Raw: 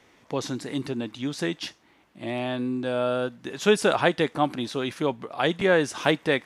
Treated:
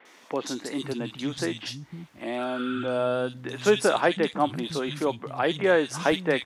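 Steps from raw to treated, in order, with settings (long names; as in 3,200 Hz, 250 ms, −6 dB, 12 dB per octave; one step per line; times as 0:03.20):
healed spectral selection 0:02.41–0:02.92, 1,200–4,100 Hz after
pitch vibrato 0.43 Hz 9.4 cents
three-band delay without the direct sound mids, highs, lows 50/510 ms, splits 180/2,600 Hz
one half of a high-frequency compander encoder only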